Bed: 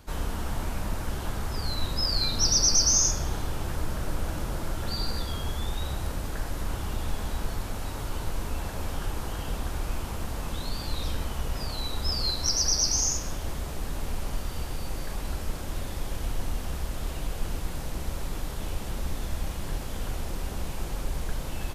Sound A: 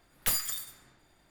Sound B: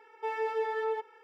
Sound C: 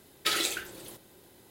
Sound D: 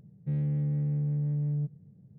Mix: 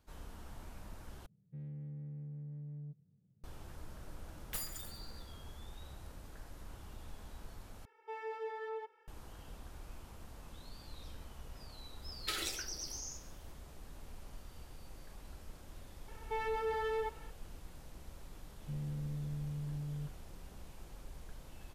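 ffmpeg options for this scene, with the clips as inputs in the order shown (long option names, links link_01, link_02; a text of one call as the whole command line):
ffmpeg -i bed.wav -i cue0.wav -i cue1.wav -i cue2.wav -i cue3.wav -filter_complex "[4:a]asplit=2[link_01][link_02];[2:a]asplit=2[link_03][link_04];[0:a]volume=-19dB[link_05];[1:a]aecho=1:1:140|280|420:0.0944|0.0434|0.02[link_06];[link_04]asoftclip=type=tanh:threshold=-31.5dB[link_07];[link_05]asplit=3[link_08][link_09][link_10];[link_08]atrim=end=1.264[link_11];[link_01]atrim=end=2.18,asetpts=PTS-STARTPTS,volume=-16.5dB[link_12];[link_09]atrim=start=3.436:end=7.854[link_13];[link_03]atrim=end=1.23,asetpts=PTS-STARTPTS,volume=-10.5dB[link_14];[link_10]atrim=start=9.076[link_15];[link_06]atrim=end=1.3,asetpts=PTS-STARTPTS,volume=-13dB,afade=type=in:duration=0.004:curve=hsin,afade=type=out:start_time=1.296:duration=0.004:curve=hsin,adelay=4270[link_16];[3:a]atrim=end=1.5,asetpts=PTS-STARTPTS,volume=-10.5dB,afade=type=in:duration=0.004:curve=hsin,afade=type=out:start_time=1.496:duration=0.004:curve=hsin,adelay=12020[link_17];[link_07]atrim=end=1.23,asetpts=PTS-STARTPTS,volume=-0.5dB,afade=type=in:duration=0.004:curve=hsin,afade=type=out:start_time=1.226:duration=0.004:curve=hsin,adelay=16080[link_18];[link_02]atrim=end=2.18,asetpts=PTS-STARTPTS,volume=-11.5dB,afade=type=in:duration=0.004:curve=hsin,afade=type=out:start_time=2.176:duration=0.004:curve=hsin,adelay=18410[link_19];[link_11][link_12]acrossfade=duration=0.004:curve1=hsin:curve2=hsin[link_20];[link_20][link_13]acrossfade=duration=0.004:curve1=hsin:curve2=hsin[link_21];[link_21][link_14]acrossfade=duration=0.004:curve1=hsin:curve2=hsin[link_22];[link_22][link_15]acrossfade=duration=0.004:curve1=hsin:curve2=hsin[link_23];[link_23][link_16][link_17][link_18][link_19]amix=inputs=5:normalize=0" out.wav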